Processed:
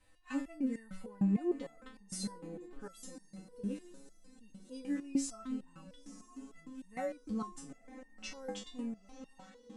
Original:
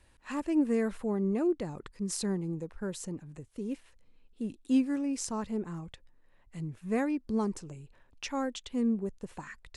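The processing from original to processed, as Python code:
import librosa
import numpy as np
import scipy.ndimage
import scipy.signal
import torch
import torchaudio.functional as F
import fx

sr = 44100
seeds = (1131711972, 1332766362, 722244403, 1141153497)

y = fx.fade_out_tail(x, sr, length_s=0.81)
y = y + 0.86 * np.pad(y, (int(3.9 * sr / 1000.0), 0))[:len(y)]
y = fx.echo_diffused(y, sr, ms=948, feedback_pct=54, wet_db=-15)
y = fx.resonator_held(y, sr, hz=6.6, low_hz=100.0, high_hz=920.0)
y = y * 10.0 ** (3.5 / 20.0)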